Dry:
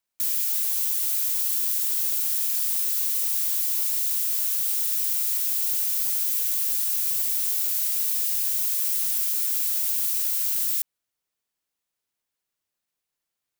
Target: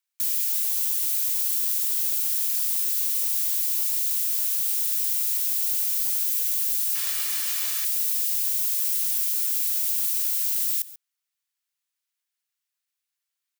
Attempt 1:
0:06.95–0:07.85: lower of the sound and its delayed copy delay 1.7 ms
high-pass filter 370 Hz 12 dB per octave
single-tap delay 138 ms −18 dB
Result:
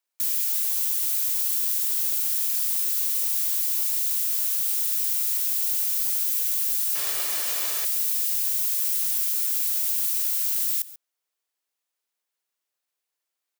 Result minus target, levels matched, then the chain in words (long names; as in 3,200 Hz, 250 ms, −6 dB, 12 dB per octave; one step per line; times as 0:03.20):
500 Hz band +15.0 dB
0:06.95–0:07.85: lower of the sound and its delayed copy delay 1.7 ms
high-pass filter 1,400 Hz 12 dB per octave
single-tap delay 138 ms −18 dB